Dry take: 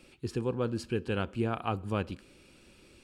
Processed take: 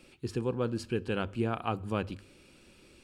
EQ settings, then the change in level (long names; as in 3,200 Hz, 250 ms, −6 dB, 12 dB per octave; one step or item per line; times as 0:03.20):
mains-hum notches 50/100 Hz
0.0 dB